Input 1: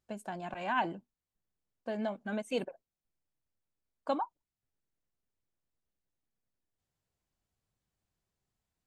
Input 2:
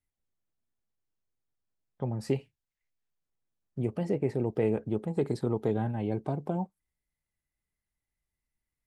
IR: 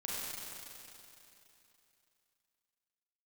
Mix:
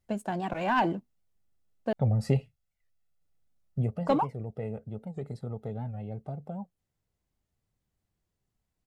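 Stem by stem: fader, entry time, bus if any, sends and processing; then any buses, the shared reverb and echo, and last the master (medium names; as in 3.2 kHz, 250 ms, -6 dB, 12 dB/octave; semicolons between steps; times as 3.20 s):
+1.0 dB, 0.00 s, muted 1.93–3.21 s, no send, waveshaping leveller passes 1
3.70 s -1 dB -> 4.19 s -13 dB, 0.00 s, no send, comb 1.5 ms, depth 71%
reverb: none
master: bass shelf 500 Hz +7 dB; warped record 78 rpm, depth 160 cents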